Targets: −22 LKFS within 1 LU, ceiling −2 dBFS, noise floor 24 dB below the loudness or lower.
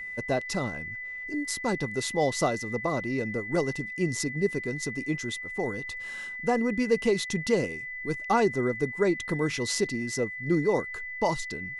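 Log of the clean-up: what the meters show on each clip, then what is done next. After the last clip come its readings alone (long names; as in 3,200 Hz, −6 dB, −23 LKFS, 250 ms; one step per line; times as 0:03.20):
interfering tone 2,000 Hz; level of the tone −35 dBFS; integrated loudness −28.5 LKFS; sample peak −12.0 dBFS; target loudness −22.0 LKFS
→ notch filter 2,000 Hz, Q 30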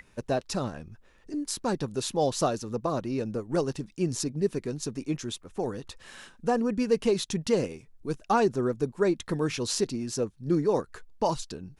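interfering tone none found; integrated loudness −29.5 LKFS; sample peak −12.0 dBFS; target loudness −22.0 LKFS
→ level +7.5 dB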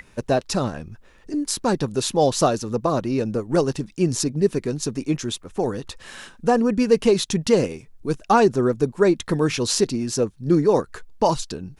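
integrated loudness −22.0 LKFS; sample peak −4.5 dBFS; background noise floor −51 dBFS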